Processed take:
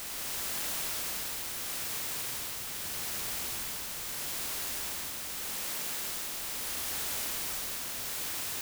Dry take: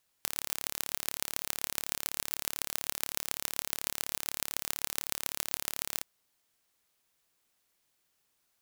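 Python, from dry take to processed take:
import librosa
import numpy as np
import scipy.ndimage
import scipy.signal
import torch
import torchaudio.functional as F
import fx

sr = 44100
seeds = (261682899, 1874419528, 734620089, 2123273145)

y = fx.add_hum(x, sr, base_hz=50, snr_db=23)
y = fx.paulstretch(y, sr, seeds[0], factor=46.0, window_s=0.05, from_s=4.69)
y = fx.rider(y, sr, range_db=3, speed_s=0.5)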